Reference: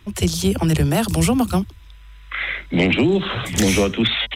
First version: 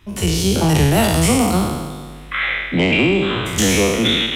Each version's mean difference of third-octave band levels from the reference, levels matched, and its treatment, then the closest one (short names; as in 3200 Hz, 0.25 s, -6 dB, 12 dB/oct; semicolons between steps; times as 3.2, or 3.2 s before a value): 6.5 dB: spectral trails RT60 1.44 s; AGC; gain -2.5 dB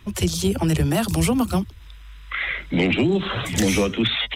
1.5 dB: bin magnitudes rounded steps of 15 dB; in parallel at -2 dB: compressor, threshold -26 dBFS, peak gain reduction 12.5 dB; on the sum: gain -4 dB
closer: second